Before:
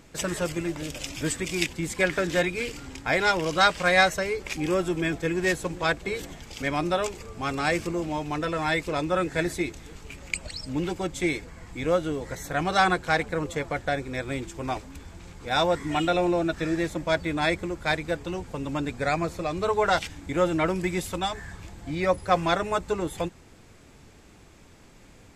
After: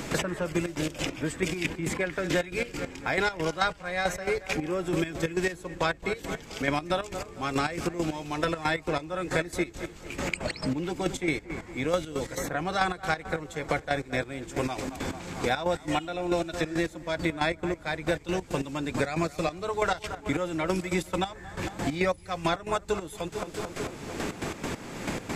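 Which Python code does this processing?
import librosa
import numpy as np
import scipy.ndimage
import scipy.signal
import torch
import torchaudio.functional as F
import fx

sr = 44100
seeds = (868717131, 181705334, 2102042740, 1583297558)

y = fx.echo_wet_lowpass(x, sr, ms=223, feedback_pct=52, hz=2400.0, wet_db=-15.0)
y = fx.step_gate(y, sr, bpm=137, pattern='.x...x.x', floor_db=-12.0, edge_ms=4.5)
y = fx.band_squash(y, sr, depth_pct=100)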